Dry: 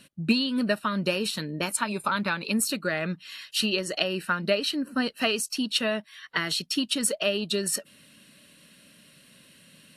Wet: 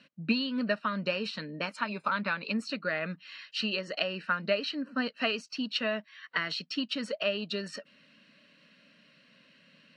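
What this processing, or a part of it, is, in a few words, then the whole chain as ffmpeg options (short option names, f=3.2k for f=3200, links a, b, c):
kitchen radio: -af "highpass=210,equalizer=f=360:t=q:w=4:g=-10,equalizer=f=830:t=q:w=4:g=-5,equalizer=f=3.5k:t=q:w=4:g=-8,lowpass=f=4.5k:w=0.5412,lowpass=f=4.5k:w=1.3066,volume=-2dB"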